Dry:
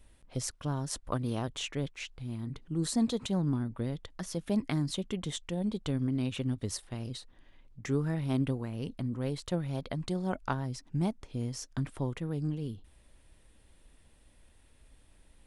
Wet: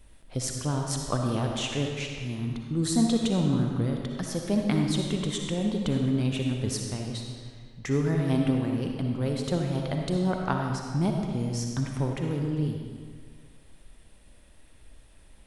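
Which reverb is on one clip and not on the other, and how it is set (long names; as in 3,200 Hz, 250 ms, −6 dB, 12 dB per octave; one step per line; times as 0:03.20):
comb and all-pass reverb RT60 1.8 s, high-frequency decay 0.85×, pre-delay 20 ms, DRR 1.5 dB
level +4 dB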